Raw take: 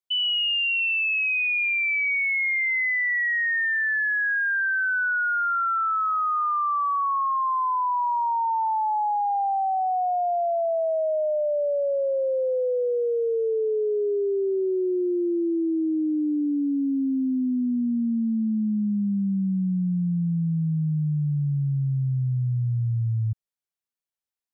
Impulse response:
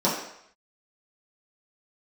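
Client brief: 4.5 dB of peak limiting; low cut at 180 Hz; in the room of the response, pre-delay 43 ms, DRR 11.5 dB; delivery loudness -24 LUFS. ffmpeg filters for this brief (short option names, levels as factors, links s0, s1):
-filter_complex "[0:a]highpass=180,alimiter=level_in=1.19:limit=0.0631:level=0:latency=1,volume=0.841,asplit=2[s0][s1];[1:a]atrim=start_sample=2205,adelay=43[s2];[s1][s2]afir=irnorm=-1:irlink=0,volume=0.0473[s3];[s0][s3]amix=inputs=2:normalize=0,volume=1.58"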